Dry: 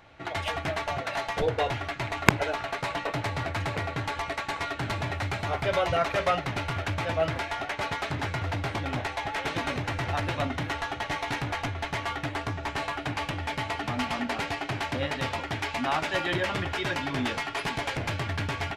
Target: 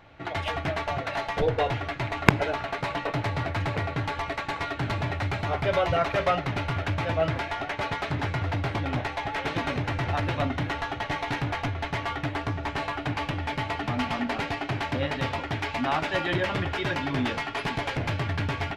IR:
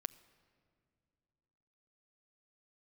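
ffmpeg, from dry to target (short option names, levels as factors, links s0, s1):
-filter_complex "[0:a]asplit=2[s0][s1];[1:a]atrim=start_sample=2205,lowpass=5900,lowshelf=f=500:g=5.5[s2];[s1][s2]afir=irnorm=-1:irlink=0,volume=1.19[s3];[s0][s3]amix=inputs=2:normalize=0,volume=0.562"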